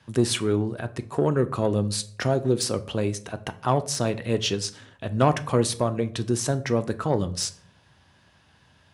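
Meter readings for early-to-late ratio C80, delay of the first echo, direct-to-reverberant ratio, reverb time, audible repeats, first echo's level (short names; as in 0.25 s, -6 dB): 21.5 dB, none, 10.0 dB, 0.60 s, none, none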